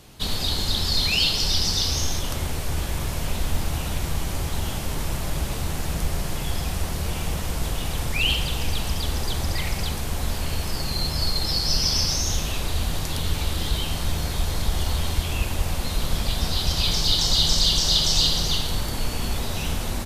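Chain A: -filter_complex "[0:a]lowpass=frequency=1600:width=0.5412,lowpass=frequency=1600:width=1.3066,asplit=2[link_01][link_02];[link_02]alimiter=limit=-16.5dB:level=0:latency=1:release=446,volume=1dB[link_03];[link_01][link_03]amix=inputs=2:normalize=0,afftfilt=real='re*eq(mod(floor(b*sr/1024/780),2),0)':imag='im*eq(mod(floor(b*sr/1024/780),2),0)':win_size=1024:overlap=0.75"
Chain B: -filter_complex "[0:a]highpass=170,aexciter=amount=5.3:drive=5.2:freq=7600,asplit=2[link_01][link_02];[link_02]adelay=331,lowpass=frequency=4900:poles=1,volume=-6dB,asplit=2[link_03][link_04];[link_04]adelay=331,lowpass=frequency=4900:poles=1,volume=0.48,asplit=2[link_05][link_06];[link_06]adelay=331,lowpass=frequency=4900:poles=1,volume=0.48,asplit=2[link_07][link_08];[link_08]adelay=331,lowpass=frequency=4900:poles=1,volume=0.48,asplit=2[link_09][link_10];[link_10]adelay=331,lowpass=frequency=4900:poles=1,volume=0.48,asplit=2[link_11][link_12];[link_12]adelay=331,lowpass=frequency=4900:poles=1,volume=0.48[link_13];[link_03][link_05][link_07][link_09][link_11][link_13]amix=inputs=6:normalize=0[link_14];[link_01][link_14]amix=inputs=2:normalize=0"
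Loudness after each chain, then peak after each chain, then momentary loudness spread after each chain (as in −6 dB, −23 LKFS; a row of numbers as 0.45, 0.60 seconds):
−24.5, −21.0 LKFS; −6.0, −4.5 dBFS; 2, 6 LU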